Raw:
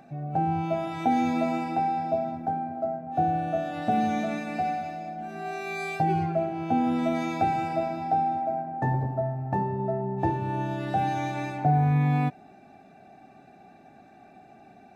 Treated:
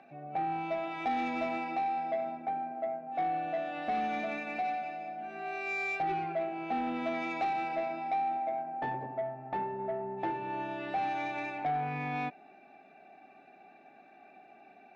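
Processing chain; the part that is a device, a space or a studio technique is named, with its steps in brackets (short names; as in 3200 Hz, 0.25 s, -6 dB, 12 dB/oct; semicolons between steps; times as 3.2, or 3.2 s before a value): intercom (BPF 330–3600 Hz; bell 2500 Hz +8 dB 0.44 oct; soft clip -22.5 dBFS, distortion -16 dB); gain -3.5 dB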